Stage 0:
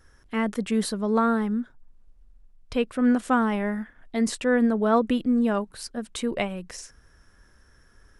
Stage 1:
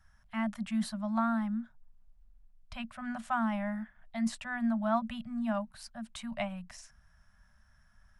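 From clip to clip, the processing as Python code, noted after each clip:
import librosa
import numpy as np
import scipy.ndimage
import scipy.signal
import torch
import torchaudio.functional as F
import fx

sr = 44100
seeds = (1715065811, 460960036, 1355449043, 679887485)

y = scipy.signal.sosfilt(scipy.signal.cheby1(5, 1.0, [230.0, 590.0], 'bandstop', fs=sr, output='sos'), x)
y = fx.high_shelf(y, sr, hz=4000.0, db=-7.0)
y = F.gain(torch.from_numpy(y), -6.0).numpy()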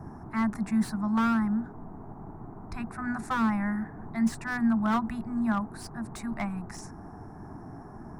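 y = fx.dmg_noise_band(x, sr, seeds[0], low_hz=73.0, high_hz=730.0, level_db=-47.0)
y = fx.fixed_phaser(y, sr, hz=1300.0, stages=4)
y = fx.slew_limit(y, sr, full_power_hz=25.0)
y = F.gain(torch.from_numpy(y), 8.0).numpy()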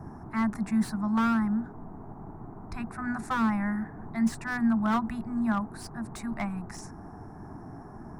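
y = x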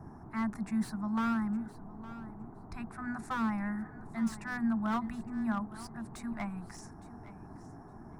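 y = fx.echo_feedback(x, sr, ms=863, feedback_pct=15, wet_db=-16)
y = F.gain(torch.from_numpy(y), -6.0).numpy()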